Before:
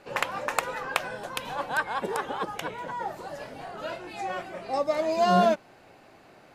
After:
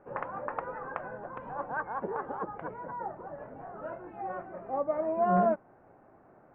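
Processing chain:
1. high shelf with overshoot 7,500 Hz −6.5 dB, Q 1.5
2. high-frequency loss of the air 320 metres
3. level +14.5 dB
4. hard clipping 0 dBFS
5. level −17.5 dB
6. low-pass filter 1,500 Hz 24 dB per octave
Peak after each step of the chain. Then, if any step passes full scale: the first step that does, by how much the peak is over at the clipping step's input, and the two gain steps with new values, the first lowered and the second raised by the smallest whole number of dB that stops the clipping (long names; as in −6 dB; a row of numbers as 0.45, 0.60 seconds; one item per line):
−4.5, −8.0, +6.5, 0.0, −17.5, −16.5 dBFS
step 3, 6.5 dB
step 3 +7.5 dB, step 5 −10.5 dB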